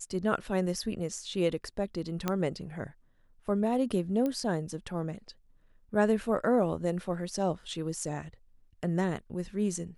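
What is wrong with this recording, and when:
2.28 pop -14 dBFS
4.26 pop -20 dBFS

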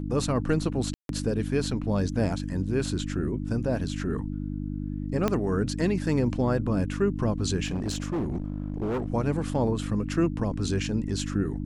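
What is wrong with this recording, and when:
hum 50 Hz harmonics 6 -32 dBFS
0.94–1.09 gap 0.152 s
5.28 pop -11 dBFS
7.66–9.08 clipped -25 dBFS

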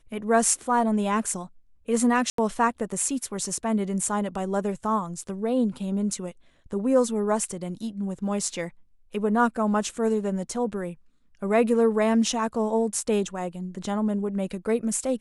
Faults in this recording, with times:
2.3–2.38 gap 83 ms

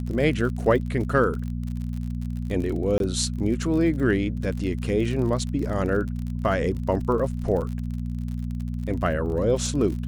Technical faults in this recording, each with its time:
crackle 45/s -31 dBFS
hum 60 Hz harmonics 4 -29 dBFS
2.98–3 gap 22 ms

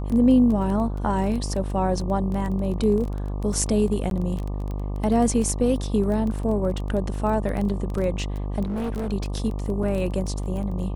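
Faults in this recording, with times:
buzz 50 Hz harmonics 24 -28 dBFS
crackle 16/s -27 dBFS
4.1–4.11 gap 12 ms
8.63–9.13 clipped -24 dBFS
9.83 gap 3.7 ms

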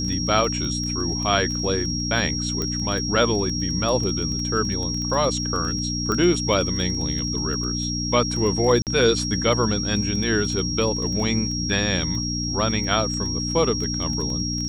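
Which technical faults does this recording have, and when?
crackle 13/s -27 dBFS
hum 60 Hz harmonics 5 -28 dBFS
tone 5600 Hz -27 dBFS
2.62 pop -12 dBFS
6.12 pop -12 dBFS
8.82–8.87 gap 48 ms

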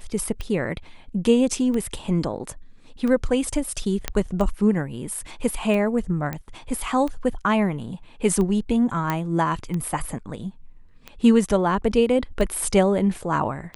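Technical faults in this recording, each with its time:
tick 45 rpm -17 dBFS
4.08 pop -7 dBFS
6.33 pop -15 dBFS
9.1 pop -10 dBFS

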